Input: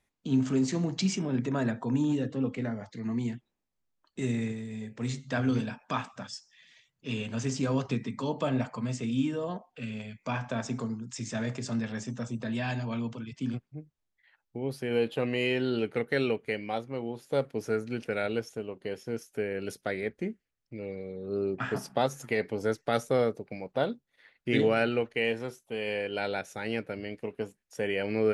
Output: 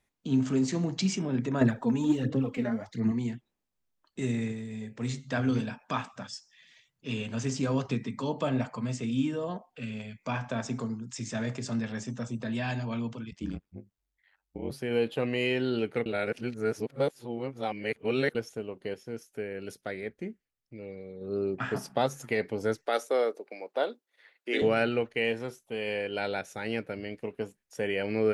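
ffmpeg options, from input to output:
-filter_complex "[0:a]asettb=1/sr,asplit=3[a][b][c];[a]atrim=end=1.614[d];[b]atrim=start=1.61:end=3.12,asetpts=PTS-STARTPTS,afade=t=in:d=0.004:c=qsin,afade=t=out:st=1.506:d=0.004:c=qsin,aphaser=in_gain=1:out_gain=1:delay=4.9:decay=0.61:speed=1.4:type=sinusoidal[e];[c]atrim=start=3.116[f];[d][e]acrossfade=d=0.004:c1=hsin:c2=qsin[g];[g][f]acrossfade=d=0.004:c1=qsin:c2=hsin,asplit=3[h][i][j];[h]afade=t=out:st=13.3:d=0.02[k];[i]aeval=exprs='val(0)*sin(2*PI*47*n/s)':c=same,afade=t=in:st=13.3:d=0.02,afade=t=out:st=14.7:d=0.02[l];[j]afade=t=in:st=14.7:d=0.02[m];[k][l][m]amix=inputs=3:normalize=0,asettb=1/sr,asplit=3[n][o][p];[n]atrim=end=22.864[q];[o]atrim=start=22.86:end=24.62,asetpts=PTS-STARTPTS,afade=t=in:d=0.004:c=qsin,afade=t=out:st=1.756:d=0.004:c=qsin,highpass=f=330:w=0.5412,highpass=f=330:w=1.3066[r];[p]atrim=start=24.616[s];[q][r]acrossfade=d=0.004:c1=hsin:c2=qsin[t];[t][s]acrossfade=d=0.004:c1=qsin:c2=hsin,asplit=5[u][v][w][x][y];[u]atrim=end=16.062[z];[v]atrim=start=16.058:end=18.352,asetpts=PTS-STARTPTS,areverse[aa];[w]atrim=start=18.348:end=18.942[ab];[x]atrim=start=18.938:end=21.212,asetpts=PTS-STARTPTS,volume=-4dB[ac];[y]atrim=start=21.208[ad];[z][aa]acrossfade=d=0.004:c1=hsin:c2=hsin[ae];[ae][ab]acrossfade=d=0.004:c1=hsin:c2=hsin[af];[af][ac]acrossfade=d=0.004:c1=hsin:c2=hsin[ag];[ag][ad]acrossfade=d=0.004:c1=hsin:c2=hsin"

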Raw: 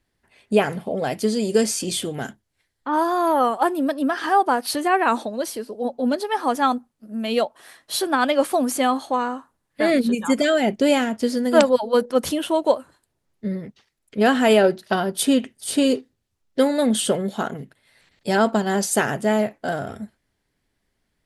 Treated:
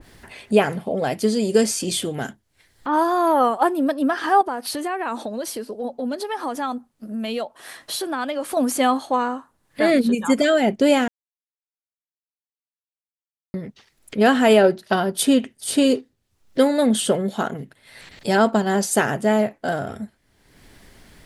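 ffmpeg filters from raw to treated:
-filter_complex "[0:a]asettb=1/sr,asplit=3[a][b][c];[a]atrim=end=4.414[d];[b]atrim=start=4.41:end=8.57,asetpts=PTS-STARTPTS,afade=t=in:d=0.004:c=qsin,afade=t=out:st=4.156:d=0.004:c=qsin,acompressor=threshold=-26dB:ratio=3:attack=3.2:release=140:knee=1:detection=peak[e];[c]atrim=start=8.566[f];[d][e]acrossfade=d=0.004:c1=hsin:c2=qsin[g];[g][f]acrossfade=d=0.004:c1=qsin:c2=hsin,asplit=3[h][i][j];[h]atrim=end=11.08,asetpts=PTS-STARTPTS,afade=t=out:st=11.076:d=0.004:c=hsin[k];[i]atrim=start=11.08:end=13.54,asetpts=PTS-STARTPTS,volume=0[l];[j]atrim=start=13.54,asetpts=PTS-STARTPTS,afade=t=in:d=0.004:c=hsin[m];[k][l][m]concat=n=3:v=0:a=1,acompressor=mode=upward:threshold=-30dB:ratio=2.5,adynamicequalizer=threshold=0.0251:dfrequency=1800:dqfactor=0.7:tfrequency=1800:tqfactor=0.7:attack=5:release=100:ratio=0.375:range=1.5:mode=cutabove:tftype=highshelf,volume=1.5dB"

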